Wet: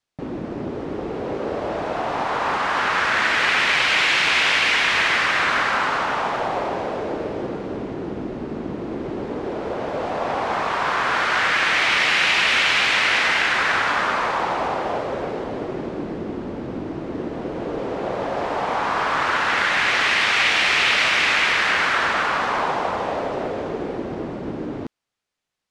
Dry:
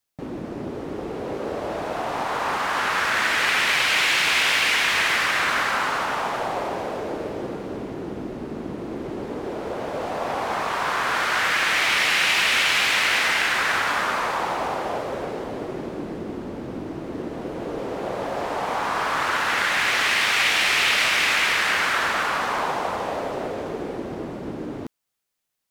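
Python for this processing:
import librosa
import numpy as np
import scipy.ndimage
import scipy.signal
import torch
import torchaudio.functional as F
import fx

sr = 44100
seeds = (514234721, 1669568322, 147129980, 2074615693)

y = fx.air_absorb(x, sr, metres=80.0)
y = y * 10.0 ** (3.0 / 20.0)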